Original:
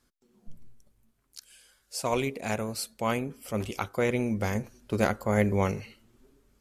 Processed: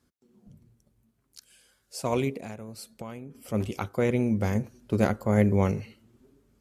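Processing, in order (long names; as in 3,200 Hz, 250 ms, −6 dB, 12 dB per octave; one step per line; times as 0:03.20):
high-pass filter 71 Hz
low-shelf EQ 480 Hz +9 dB
0:02.37–0:03.35: downward compressor 6 to 1, threshold −34 dBFS, peak gain reduction 14.5 dB
level −3.5 dB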